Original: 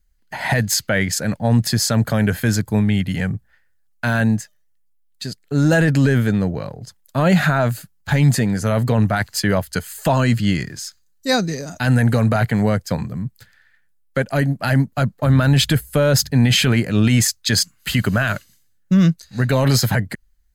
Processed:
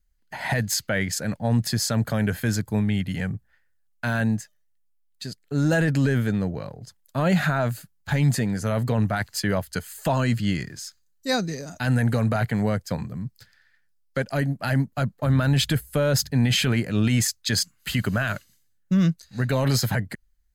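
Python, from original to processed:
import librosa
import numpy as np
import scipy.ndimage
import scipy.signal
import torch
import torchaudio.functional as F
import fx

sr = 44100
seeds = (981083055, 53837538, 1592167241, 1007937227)

y = fx.peak_eq(x, sr, hz=5100.0, db=8.0, octaves=0.56, at=(13.21, 14.35))
y = y * librosa.db_to_amplitude(-6.0)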